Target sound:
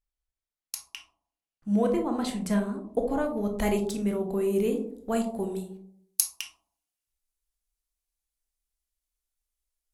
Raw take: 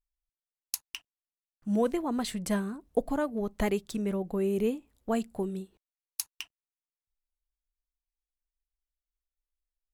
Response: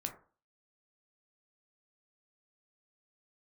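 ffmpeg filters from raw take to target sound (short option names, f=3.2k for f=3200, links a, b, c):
-filter_complex "[0:a]asetnsamples=n=441:p=0,asendcmd='3.26 highshelf g 6.5;5.56 highshelf g 12',highshelf=f=4.7k:g=-2.5[a];[1:a]atrim=start_sample=2205,asetrate=23814,aresample=44100[b];[a][b]afir=irnorm=-1:irlink=0,volume=-1.5dB"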